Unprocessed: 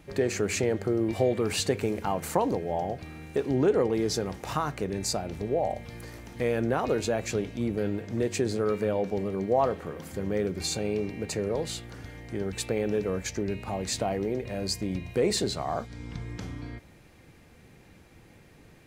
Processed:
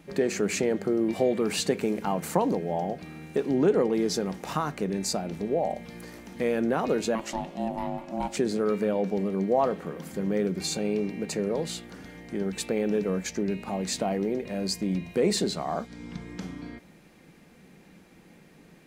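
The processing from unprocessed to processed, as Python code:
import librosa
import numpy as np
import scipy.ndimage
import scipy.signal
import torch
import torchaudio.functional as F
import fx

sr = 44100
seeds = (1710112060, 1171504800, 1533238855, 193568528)

y = fx.ring_mod(x, sr, carrier_hz=450.0, at=(7.15, 8.37))
y = fx.low_shelf_res(y, sr, hz=140.0, db=-7.0, q=3.0)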